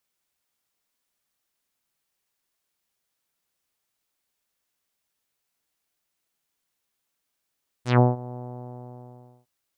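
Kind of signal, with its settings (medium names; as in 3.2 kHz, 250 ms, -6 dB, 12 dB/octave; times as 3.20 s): synth note saw B2 24 dB/octave, low-pass 820 Hz, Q 2, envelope 4 oct, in 0.14 s, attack 140 ms, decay 0.17 s, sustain -21 dB, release 1.10 s, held 0.51 s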